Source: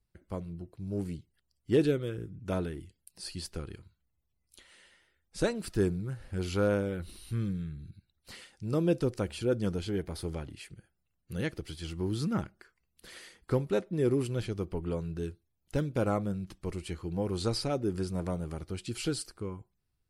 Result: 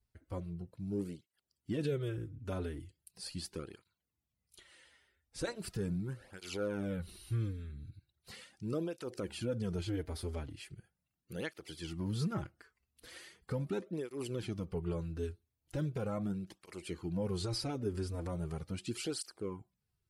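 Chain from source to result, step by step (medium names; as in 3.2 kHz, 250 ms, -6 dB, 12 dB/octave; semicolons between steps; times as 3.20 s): peak limiter -24 dBFS, peak gain reduction 8 dB; cancelling through-zero flanger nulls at 0.39 Hz, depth 6.4 ms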